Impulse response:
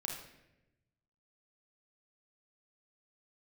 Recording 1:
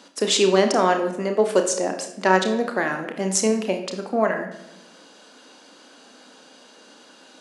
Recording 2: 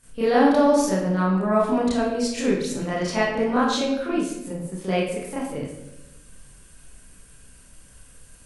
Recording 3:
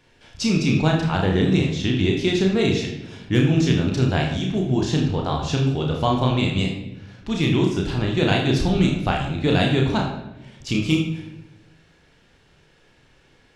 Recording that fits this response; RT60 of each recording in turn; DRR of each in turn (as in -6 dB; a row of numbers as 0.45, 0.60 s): 3; 0.95, 0.95, 0.95 s; 5.0, -10.5, -0.5 dB